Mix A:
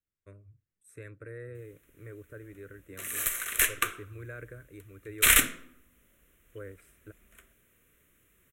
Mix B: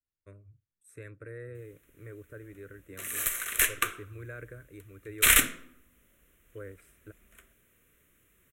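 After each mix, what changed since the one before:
second voice −5.5 dB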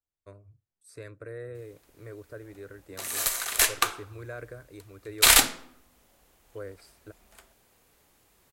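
master: remove phaser with its sweep stopped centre 2,000 Hz, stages 4

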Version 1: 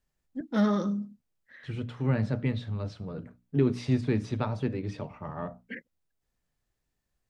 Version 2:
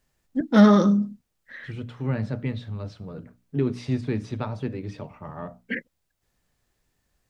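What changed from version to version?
first voice +10.5 dB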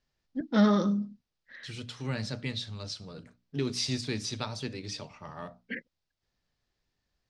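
second voice: remove head-to-tape spacing loss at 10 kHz 40 dB
master: add transistor ladder low-pass 5,900 Hz, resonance 40%

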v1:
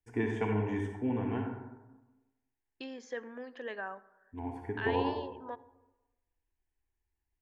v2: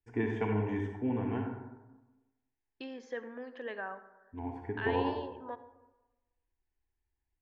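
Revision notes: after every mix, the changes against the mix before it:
second voice: send +7.0 dB
master: add high-frequency loss of the air 110 metres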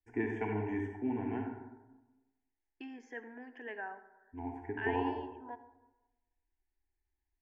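master: add phaser with its sweep stopped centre 800 Hz, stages 8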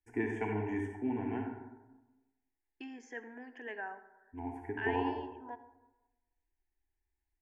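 master: remove high-frequency loss of the air 110 metres

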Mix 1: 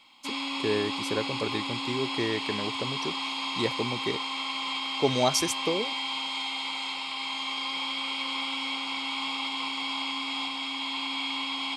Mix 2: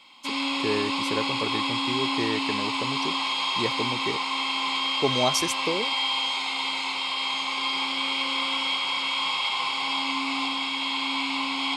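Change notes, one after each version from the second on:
reverb: on, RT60 2.5 s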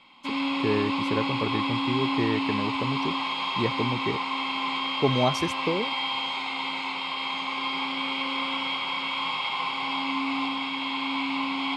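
master: add bass and treble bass +7 dB, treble −14 dB

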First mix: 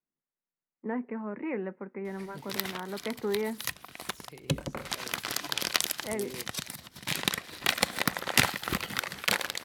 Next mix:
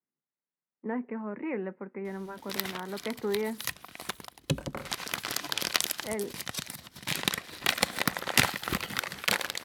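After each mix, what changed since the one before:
second voice: muted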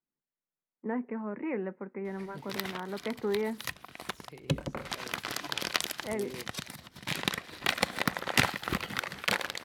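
second voice: unmuted
master: add high-shelf EQ 5,000 Hz −8.5 dB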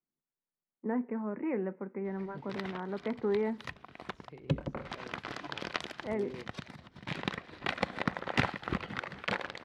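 first voice: send +10.5 dB
master: add head-to-tape spacing loss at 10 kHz 25 dB

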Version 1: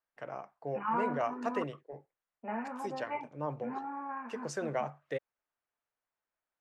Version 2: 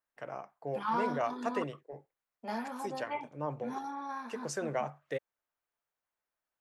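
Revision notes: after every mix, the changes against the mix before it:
second voice: remove linear-phase brick-wall low-pass 3,000 Hz
master: add high-shelf EQ 8,900 Hz +12 dB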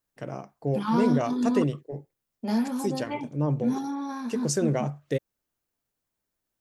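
master: remove three-way crossover with the lows and the highs turned down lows −17 dB, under 580 Hz, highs −12 dB, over 2,500 Hz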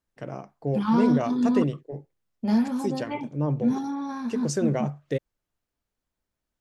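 second voice: remove Chebyshev high-pass filter 290 Hz, order 2
master: add high-shelf EQ 8,900 Hz −12 dB

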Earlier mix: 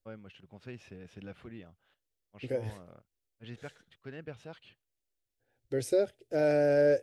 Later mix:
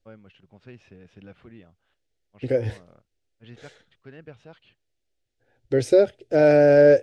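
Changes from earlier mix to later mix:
second voice +11.0 dB
master: add high-frequency loss of the air 75 metres

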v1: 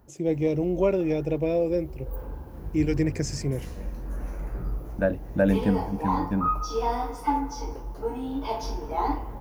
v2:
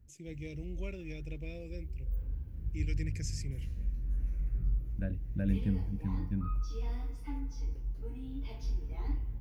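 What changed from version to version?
first voice: add spectral tilt +3 dB per octave
master: add drawn EQ curve 100 Hz 0 dB, 890 Hz −29 dB, 2,300 Hz −11 dB, 5,400 Hz −16 dB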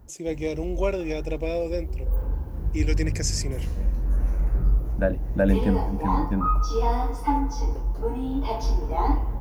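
background: add low-shelf EQ 150 Hz +11.5 dB
master: remove drawn EQ curve 100 Hz 0 dB, 890 Hz −29 dB, 2,300 Hz −11 dB, 5,400 Hz −16 dB

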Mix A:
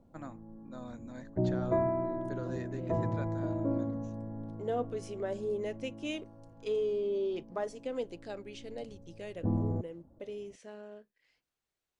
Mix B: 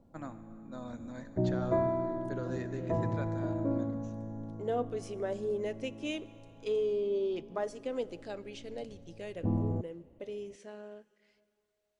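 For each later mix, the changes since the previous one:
reverb: on, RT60 2.6 s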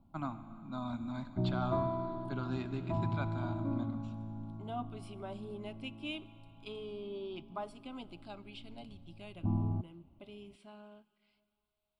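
first voice +8.0 dB
master: add phaser with its sweep stopped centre 1,800 Hz, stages 6

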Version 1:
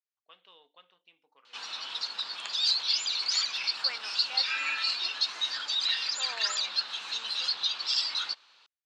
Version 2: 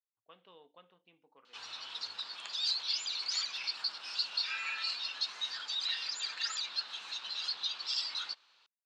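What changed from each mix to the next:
first voice: add spectral tilt −4 dB per octave
second voice: muted
background −6.5 dB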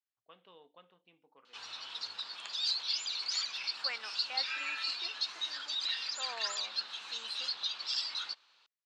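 second voice: unmuted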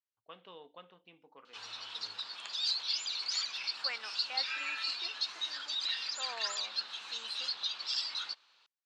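first voice +6.5 dB

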